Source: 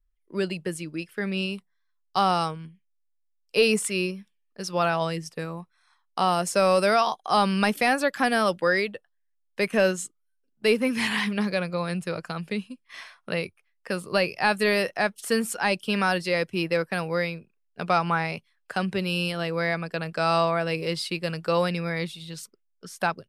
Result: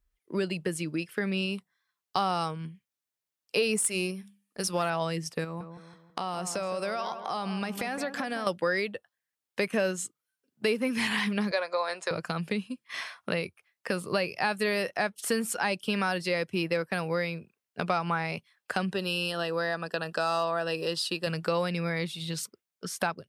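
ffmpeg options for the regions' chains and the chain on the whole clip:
-filter_complex "[0:a]asettb=1/sr,asplit=3[a][b][c];[a]atrim=end=3.784[d];[b]atrim=start=3.78:end=4.9,asetpts=PTS-STARTPTS,afade=t=in:d=0.004:c=qsin,afade=t=out:st=1.116:d=0.004:c=qsin,aeval=exprs='if(lt(val(0),0),0.708*val(0),val(0))':c=same,equalizer=f=10k:t=o:w=0.71:g=11.5,bandreject=f=50:t=h:w=6,bandreject=f=100:t=h:w=6,bandreject=f=150:t=h:w=6,bandreject=f=200:t=h:w=6[e];[c]atrim=start=4.896[f];[d][e]acrossfade=d=0.004:c1=hsin:c2=qsin[g];[g][f]acrossfade=d=0.004:c1=qsin:c2=hsin,asettb=1/sr,asplit=3[h][i][j];[h]atrim=end=5.444[k];[i]atrim=start=5.44:end=8.47,asetpts=PTS-STARTPTS,afade=t=in:d=0.004:c=qsin,afade=t=out:st=3.026:d=0.004:c=qsin,equalizer=f=11k:t=o:w=0.33:g=-8,acompressor=threshold=-36dB:ratio=3:attack=3.2:release=140:knee=1:detection=peak,asplit=2[l][m];[m]adelay=164,lowpass=f=1.6k:p=1,volume=-9.5dB,asplit=2[n][o];[o]adelay=164,lowpass=f=1.6k:p=1,volume=0.46,asplit=2[p][q];[q]adelay=164,lowpass=f=1.6k:p=1,volume=0.46,asplit=2[r][s];[s]adelay=164,lowpass=f=1.6k:p=1,volume=0.46,asplit=2[t][u];[u]adelay=164,lowpass=f=1.6k:p=1,volume=0.46[v];[l][n][p][r][t][v]amix=inputs=6:normalize=0,atrim=end_sample=133623[w];[j]atrim=start=8.466[x];[k][w]acrossfade=d=0.004:c1=hsin:c2=qsin[y];[y][x]acrossfade=d=0.004:c1=qsin:c2=hsin,asettb=1/sr,asplit=3[z][aa][ab];[z]atrim=end=11.514[ac];[aa]atrim=start=11.51:end=12.11,asetpts=PTS-STARTPTS,afade=t=in:d=0.004:c=qsin,afade=t=out:st=0.596:d=0.004:c=qsin,highpass=f=420:w=0.5412,highpass=f=420:w=1.3066,equalizer=f=630:t=q:w=4:g=5,equalizer=f=980:t=q:w=4:g=9,equalizer=f=1.8k:t=q:w=4:g=4,equalizer=f=2.8k:t=q:w=4:g=-5,equalizer=f=4k:t=q:w=4:g=4,equalizer=f=6.7k:t=q:w=4:g=5,lowpass=f=8.4k:w=0.5412,lowpass=f=8.4k:w=1.3066,asplit=2[ad][ae];[ae]adelay=13,volume=-13dB[af];[ad][af]amix=inputs=2:normalize=0,atrim=end_sample=26460[ag];[ab]atrim=start=12.106[ah];[ac][ag]acrossfade=d=0.004:c1=hsin:c2=qsin[ai];[ai][ah]acrossfade=d=0.004:c1=qsin:c2=hsin,asettb=1/sr,asplit=3[aj][ak][al];[aj]atrim=end=18.914[am];[ak]atrim=start=18.91:end=21.27,asetpts=PTS-STARTPTS,afade=t=in:d=0.004:c=qsin,afade=t=out:st=2.356:d=0.004:c=qsin,equalizer=f=99:t=o:w=2.1:g=-12,asoftclip=type=hard:threshold=-14.5dB,asuperstop=centerf=2200:order=4:qfactor=3.8[an];[al]atrim=start=21.266[ao];[am][an]acrossfade=d=0.004:c1=hsin:c2=qsin[ap];[ap][ao]acrossfade=d=0.004:c1=qsin:c2=hsin,highpass=48,acompressor=threshold=-35dB:ratio=2.5,volume=5.5dB"

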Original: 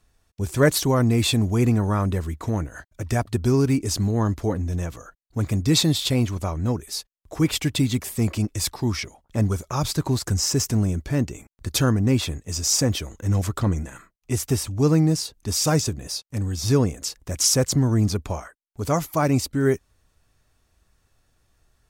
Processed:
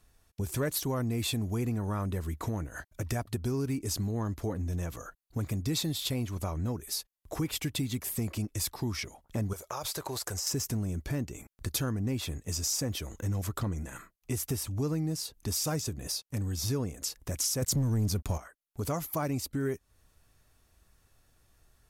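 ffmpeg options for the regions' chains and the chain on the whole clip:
-filter_complex "[0:a]asettb=1/sr,asplit=3[a][b][c];[a]atrim=end=9.534[d];[b]atrim=start=9.53:end=10.47,asetpts=PTS-STARTPTS,afade=t=in:d=0.004:c=qsin,afade=t=out:st=0.936:d=0.004:c=qsin,lowshelf=f=350:t=q:w=1.5:g=-12,acompressor=threshold=-29dB:ratio=6:attack=3.2:release=140:knee=1:detection=peak[e];[c]atrim=start=10.466[f];[d][e]acrossfade=d=0.004:c1=hsin:c2=qsin[g];[g][f]acrossfade=d=0.004:c1=qsin:c2=hsin,asettb=1/sr,asplit=3[h][i][j];[h]atrim=end=17.624[k];[i]atrim=start=17.62:end=18.38,asetpts=PTS-STARTPTS,afade=t=in:d=0.004:c=qsin,afade=t=out:st=0.756:d=0.004:c=qsin,bass=f=250:g=6,treble=f=4k:g=6,acontrast=71,aeval=exprs='sgn(val(0))*max(abs(val(0))-0.0106,0)':c=same[l];[j]atrim=start=18.376[m];[k][l]acrossfade=d=0.004:c1=hsin:c2=qsin[n];[n][m]acrossfade=d=0.004:c1=qsin:c2=hsin,acontrast=28,equalizer=f=12k:w=2:g=9,acompressor=threshold=-26dB:ratio=3,volume=-6dB"

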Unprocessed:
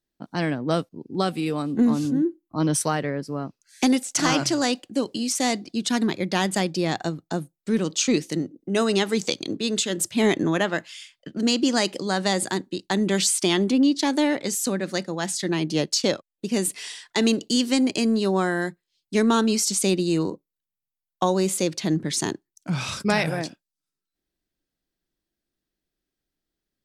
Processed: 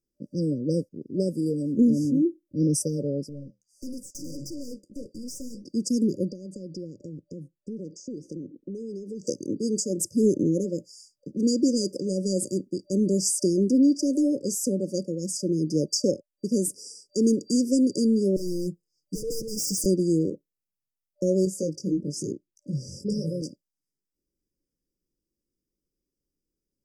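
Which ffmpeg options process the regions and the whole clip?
-filter_complex "[0:a]asettb=1/sr,asplit=3[a][b][c];[a]atrim=end=3.294[d];[b]atrim=start=3.29:end=5.65,asetpts=PTS-STARTPTS,afade=t=in:d=0.004:c=qsin,afade=t=out:st=2.356:d=0.004:c=qsin,flanger=delay=5.7:depth=7.1:regen=-64:speed=1.6:shape=sinusoidal,aeval=exprs='(tanh(44.7*val(0)+0.65)-tanh(0.65))/44.7':c=same,bandreject=f=400:w=6.3[e];[c]atrim=start=5.646[f];[d][e]acrossfade=d=0.004:c1=hsin:c2=qsin[g];[g][f]acrossfade=d=0.004:c1=qsin:c2=hsin,asettb=1/sr,asplit=3[h][i][j];[h]atrim=end=6.304[k];[i]atrim=start=6.3:end=9.27,asetpts=PTS-STARTPTS,afade=t=in:d=0.004:c=qsin,afade=t=out:st=2.966:d=0.004:c=qsin,equalizer=f=3.6k:w=1.1:g=-5.5,acompressor=threshold=-31dB:ratio=16:attack=3.2:release=140:knee=1:detection=peak,lowpass=4.6k[l];[j]atrim=start=9.266[m];[k][l]acrossfade=d=0.004:c1=hsin:c2=qsin[n];[n][m]acrossfade=d=0.004:c1=qsin:c2=hsin,asettb=1/sr,asplit=3[o][p][q];[o]atrim=end=18.364[r];[p]atrim=start=18.36:end=19.86,asetpts=PTS-STARTPTS,afade=t=in:d=0.004:c=qsin,afade=t=out:st=1.496:d=0.004:c=qsin,aeval=exprs='0.0708*(abs(mod(val(0)/0.0708+3,4)-2)-1)':c=same,aecho=1:1:6.4:0.89,atrim=end_sample=66150[s];[q]atrim=start=19.856[t];[r][s]acrossfade=d=0.004:c1=hsin:c2=qsin[u];[u][t]acrossfade=d=0.004:c1=qsin:c2=hsin,asettb=1/sr,asplit=3[v][w][x];[v]atrim=end=21.454[y];[w]atrim=start=21.45:end=23.42,asetpts=PTS-STARTPTS,afade=t=in:d=0.004:c=qsin,afade=t=out:st=1.966:d=0.004:c=qsin,highshelf=f=7.9k:g=-8,flanger=delay=16.5:depth=5.4:speed=1[z];[x]atrim=start=23.416[aa];[y][z]acrossfade=d=0.004:c1=hsin:c2=qsin[ab];[ab][aa]acrossfade=d=0.004:c1=qsin:c2=hsin,afftfilt=real='re*(1-between(b*sr/4096,590,4700))':imag='im*(1-between(b*sr/4096,590,4700))':win_size=4096:overlap=0.75,highshelf=f=5.6k:g=-4"

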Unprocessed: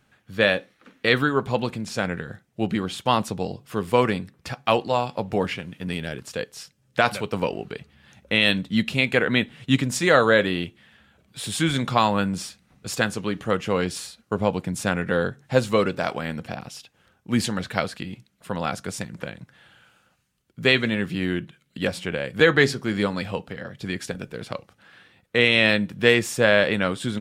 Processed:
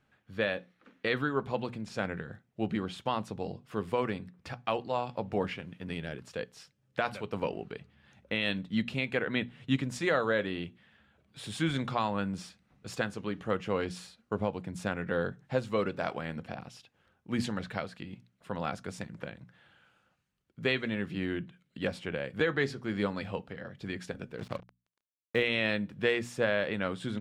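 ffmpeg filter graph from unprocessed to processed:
-filter_complex "[0:a]asettb=1/sr,asplit=3[a][b][c];[a]atrim=end=24.384[d];[b]atrim=start=24.38:end=25.43,asetpts=PTS-STARTPTS,afade=t=in:d=0.004:c=qsin,afade=t=out:st=1.046:d=0.004:c=qsin,lowshelf=f=360:g=5.5,acrusher=bits=5:mix=0:aa=0.5[e];[c]atrim=start=25.426[f];[d][e]acrossfade=d=0.004:c1=hsin:c2=qsin[g];[g][f]acrossfade=d=0.004:c1=qsin:c2=hsin,lowpass=f=3.1k:p=1,bandreject=f=60:t=h:w=6,bandreject=f=120:t=h:w=6,bandreject=f=180:t=h:w=6,bandreject=f=240:t=h:w=6,alimiter=limit=-9.5dB:level=0:latency=1:release=440,volume=-7dB"

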